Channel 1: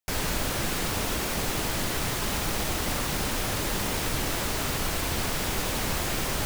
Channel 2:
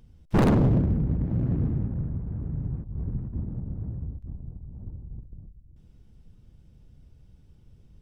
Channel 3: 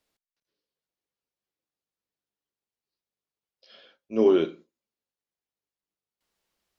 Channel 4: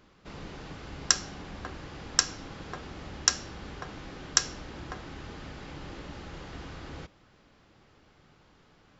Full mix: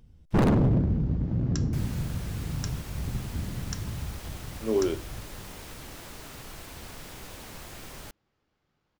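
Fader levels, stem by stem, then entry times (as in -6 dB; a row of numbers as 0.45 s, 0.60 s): -15.0 dB, -1.5 dB, -6.0 dB, -16.5 dB; 1.65 s, 0.00 s, 0.50 s, 0.45 s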